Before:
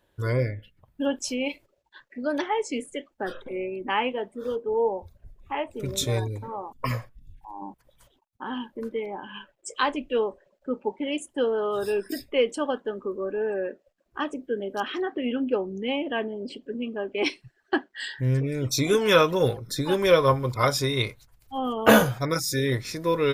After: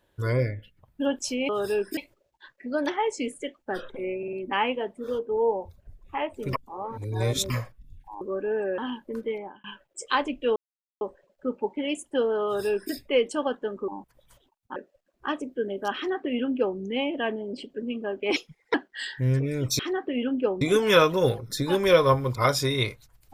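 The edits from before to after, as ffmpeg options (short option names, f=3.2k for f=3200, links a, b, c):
-filter_complex "[0:a]asplit=18[a][b][c][d][e][f][g][h][i][j][k][l][m][n][o][p][q][r];[a]atrim=end=1.492[s];[b]atrim=start=11.668:end=12.152[t];[c]atrim=start=1.488:end=3.752[u];[d]atrim=start=3.698:end=3.752[v];[e]atrim=start=3.698:end=3.752[w];[f]atrim=start=3.698:end=5.902[x];[g]atrim=start=5.898:end=6.872,asetpts=PTS-STARTPTS,areverse[y];[h]atrim=start=6.868:end=7.582[z];[i]atrim=start=13.108:end=13.682[aa];[j]atrim=start=8.458:end=9.32,asetpts=PTS-STARTPTS,afade=t=out:st=0.562:d=0.3[ab];[k]atrim=start=9.32:end=10.24,asetpts=PTS-STARTPTS,afade=t=in:d=0.004:c=hsin,afade=t=out:st=0.916:d=0.004:c=hsin,apad=pad_dur=0.45[ac];[l]atrim=start=10.24:end=13.112,asetpts=PTS-STARTPTS,afade=t=in:d=0.004:c=hsin[ad];[m]atrim=start=7.578:end=8.462[ae];[n]atrim=start=13.678:end=17.284[af];[o]atrim=start=17.28:end=17.75,asetpts=PTS-STARTPTS,asetrate=54243,aresample=44100,atrim=end_sample=16851,asetpts=PTS-STARTPTS[ag];[p]atrim=start=17.746:end=18.802[ah];[q]atrim=start=14.878:end=15.702[ai];[r]atrim=start=18.798[aj];[s][t]acrossfade=d=0.004:c1=hsin:c2=hsin[ak];[ak][u]acrossfade=d=0.004:c1=hsin:c2=hsin[al];[al][v]acrossfade=d=0.004:c1=hsin:c2=hsin[am];[am][w]acrossfade=d=0.004:c1=hsin:c2=hsin[an];[an][x]acrossfade=d=0.004:c1=hsin:c2=hsin[ao];[ao][y]acrossfade=d=0.004:c1=hsin:c2=hsin[ap];[ap][z]acrossfade=d=0.004:c1=hsin:c2=hsin[aq];[aq][aa]acrossfade=d=0.004:c1=hsin:c2=hsin[ar];[ab][ac][ad]concat=n=3:v=0:a=1[as];[ar][as]acrossfade=d=0.004:c1=hsin:c2=hsin[at];[at][ae]acrossfade=d=0.004:c1=hsin:c2=hsin[au];[au][af]acrossfade=d=0.004:c1=hsin:c2=hsin[av];[av][ag]acrossfade=d=0.004:c1=hsin:c2=hsin[aw];[aw][ah]acrossfade=d=0.004:c1=hsin:c2=hsin[ax];[ax][ai]acrossfade=d=0.004:c1=hsin:c2=hsin[ay];[ay][aj]acrossfade=d=0.004:c1=hsin:c2=hsin"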